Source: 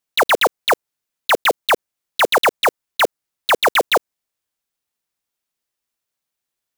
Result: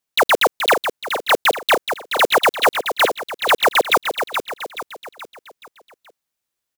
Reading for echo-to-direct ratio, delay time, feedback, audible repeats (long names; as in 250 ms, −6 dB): −6.5 dB, 426 ms, 45%, 4